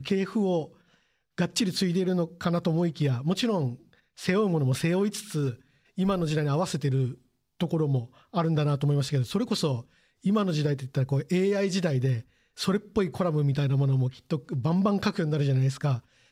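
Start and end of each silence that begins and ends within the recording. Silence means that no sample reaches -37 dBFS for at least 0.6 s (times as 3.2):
0.66–1.38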